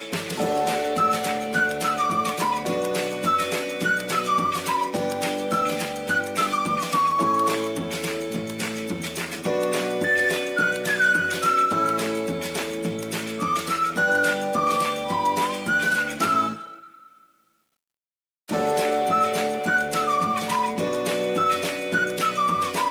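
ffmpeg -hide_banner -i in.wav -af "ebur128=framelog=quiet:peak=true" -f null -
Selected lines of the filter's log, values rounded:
Integrated loudness:
  I:         -23.3 LUFS
  Threshold: -33.5 LUFS
Loudness range:
  LRA:         3.2 LU
  Threshold: -43.7 LUFS
  LRA low:   -25.4 LUFS
  LRA high:  -22.1 LUFS
True peak:
  Peak:      -10.3 dBFS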